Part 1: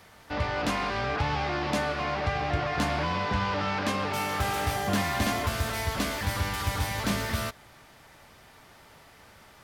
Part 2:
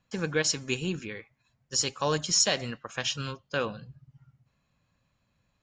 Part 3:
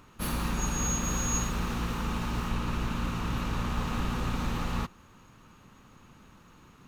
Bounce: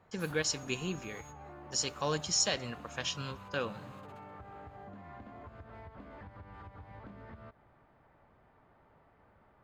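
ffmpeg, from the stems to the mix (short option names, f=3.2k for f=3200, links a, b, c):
-filter_complex "[0:a]lowpass=1.2k,acompressor=threshold=-33dB:ratio=6,volume=-8.5dB[a];[1:a]volume=-5.5dB,asplit=2[b][c];[2:a]highpass=460,acompressor=threshold=-36dB:ratio=6,volume=-12dB[d];[c]apad=whole_len=303219[e];[d][e]sidechaingate=range=-20dB:threshold=-58dB:ratio=16:detection=peak[f];[a][f]amix=inputs=2:normalize=0,bandreject=f=5.7k:w=7.3,acompressor=threshold=-46dB:ratio=6,volume=0dB[g];[b][g]amix=inputs=2:normalize=0"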